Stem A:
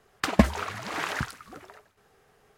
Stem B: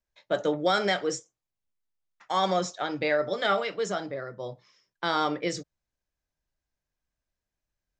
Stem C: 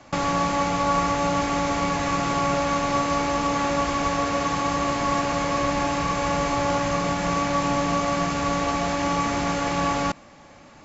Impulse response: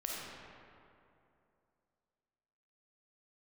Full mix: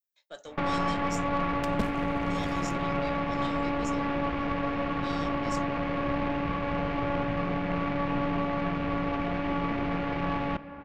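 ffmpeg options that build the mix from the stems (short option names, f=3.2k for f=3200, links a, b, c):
-filter_complex "[0:a]aeval=exprs='0.794*(cos(1*acos(clip(val(0)/0.794,-1,1)))-cos(1*PI/2))+0.112*(cos(3*acos(clip(val(0)/0.794,-1,1)))-cos(3*PI/2))+0.0501*(cos(7*acos(clip(val(0)/0.794,-1,1)))-cos(7*PI/2))':c=same,adelay=1400,volume=2.5dB[a];[1:a]aemphasis=mode=production:type=riaa,volume=-13dB[b];[2:a]lowpass=f=2.7k:w=0.5412,lowpass=f=2.7k:w=1.3066,adelay=450,volume=-1dB,asplit=2[c][d];[d]volume=-14.5dB[e];[3:a]atrim=start_sample=2205[f];[e][f]afir=irnorm=-1:irlink=0[g];[a][b][c][g]amix=inputs=4:normalize=0,adynamicequalizer=threshold=0.0158:dfrequency=1100:dqfactor=0.74:tfrequency=1100:tqfactor=0.74:attack=5:release=100:ratio=0.375:range=3:mode=cutabove:tftype=bell,aeval=exprs='(tanh(11.2*val(0)+0.6)-tanh(0.6))/11.2':c=same"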